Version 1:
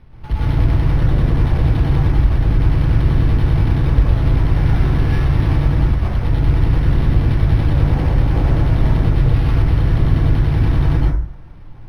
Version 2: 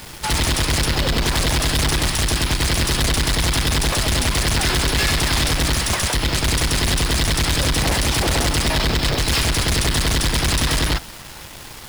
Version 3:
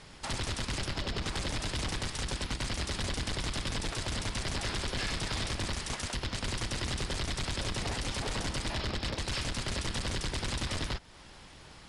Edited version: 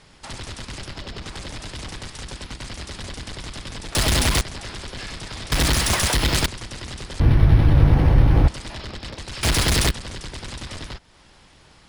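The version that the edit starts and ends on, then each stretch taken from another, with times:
3
3.95–4.41 from 2
5.52–6.46 from 2
7.2–8.48 from 1
9.43–9.91 from 2

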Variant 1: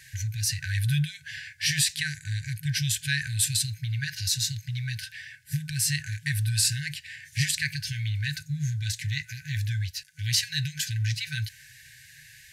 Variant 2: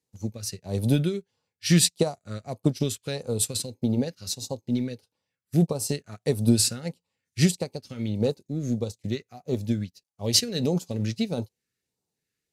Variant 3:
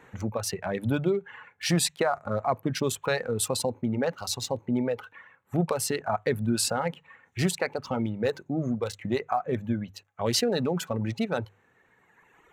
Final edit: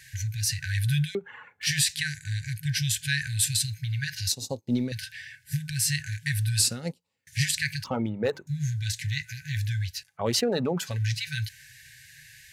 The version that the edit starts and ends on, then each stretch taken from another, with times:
1
1.15–1.67 from 3
4.32–4.92 from 2
6.6–7.27 from 2
7.84–8.47 from 3
10.07–10.89 from 3, crossfade 0.24 s

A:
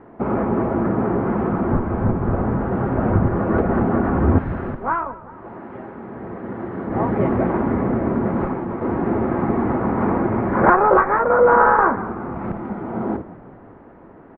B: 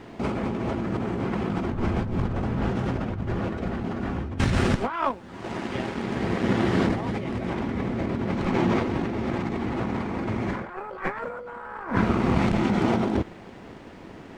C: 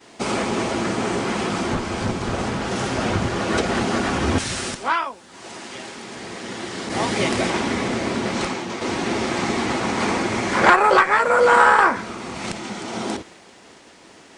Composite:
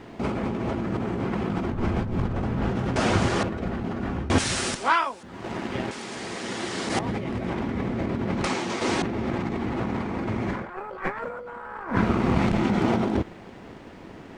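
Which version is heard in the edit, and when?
B
2.96–3.43 from C
4.3–5.23 from C
5.91–6.99 from C
8.44–9.02 from C
not used: A

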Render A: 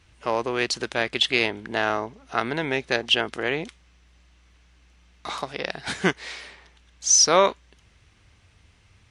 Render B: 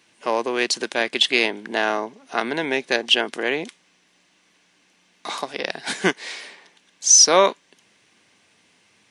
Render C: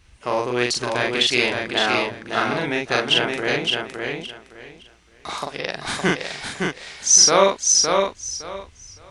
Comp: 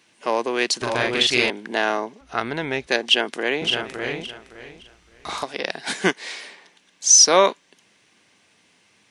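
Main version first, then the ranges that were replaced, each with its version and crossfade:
B
0.82–1.5 from C
2.21–2.87 from A
3.62–5.43 from C

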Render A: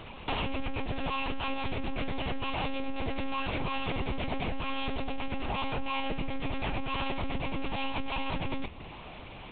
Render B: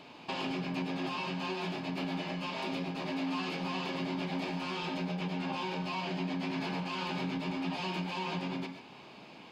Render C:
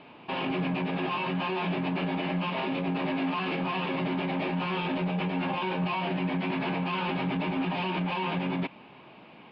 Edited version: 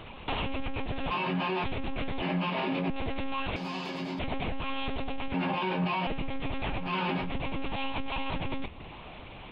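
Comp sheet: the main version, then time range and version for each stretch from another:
A
1.11–1.64 from C
2.22–2.9 from C
3.56–4.19 from B
5.34–6.07 from C
6.85–7.25 from C, crossfade 0.16 s

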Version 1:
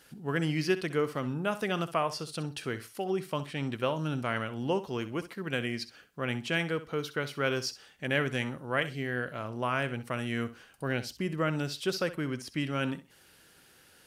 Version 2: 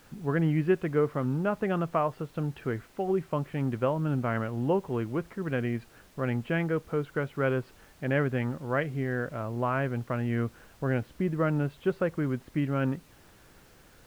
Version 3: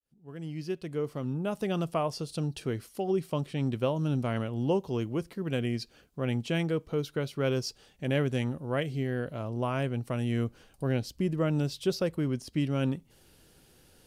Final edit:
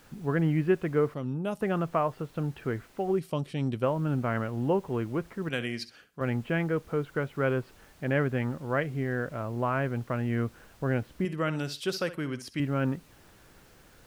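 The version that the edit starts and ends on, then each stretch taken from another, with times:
2
1.14–1.61 from 3
3.19–3.83 from 3
5.49–6.21 from 1
11.25–12.6 from 1

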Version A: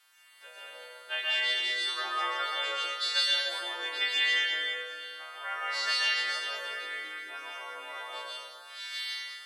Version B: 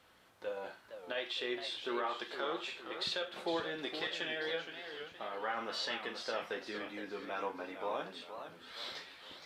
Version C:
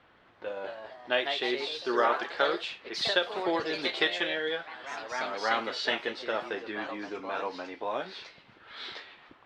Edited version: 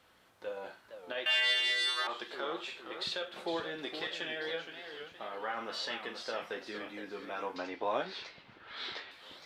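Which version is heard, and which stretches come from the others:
B
1.26–2.07 from A
7.56–9.11 from C

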